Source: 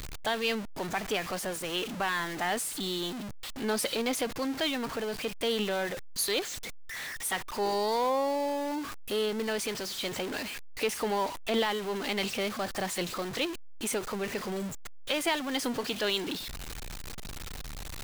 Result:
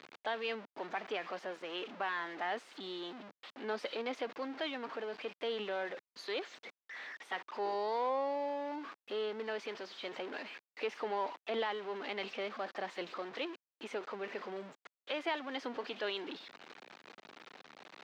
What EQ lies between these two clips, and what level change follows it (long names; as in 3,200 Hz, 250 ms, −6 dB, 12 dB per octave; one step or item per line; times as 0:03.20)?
Bessel high-pass filter 380 Hz, order 4
high-frequency loss of the air 210 metres
high-shelf EQ 4,500 Hz −6 dB
−4.0 dB